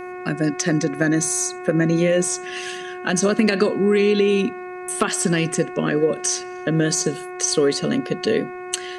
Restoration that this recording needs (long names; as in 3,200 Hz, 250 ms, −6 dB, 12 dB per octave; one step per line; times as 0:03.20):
clipped peaks rebuilt −5 dBFS
hum removal 363.5 Hz, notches 7